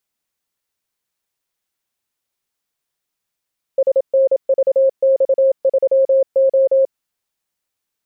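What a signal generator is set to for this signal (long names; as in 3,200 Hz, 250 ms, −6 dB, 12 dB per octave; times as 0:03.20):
Morse code "SNVX3O" 27 words per minute 536 Hz −9.5 dBFS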